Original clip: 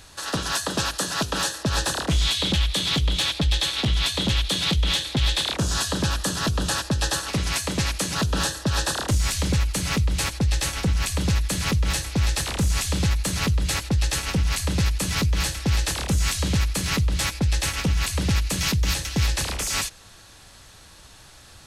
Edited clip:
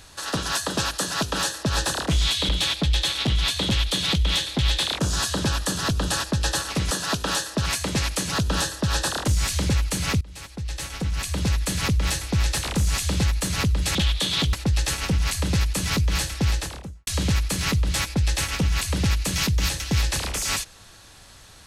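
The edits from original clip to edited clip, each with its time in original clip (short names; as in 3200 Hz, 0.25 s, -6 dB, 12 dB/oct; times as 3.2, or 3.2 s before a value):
0.99–1.74 copy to 7.49
2.49–3.07 move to 13.78
10.04–11.5 fade in, from -22.5 dB
15.67–16.32 studio fade out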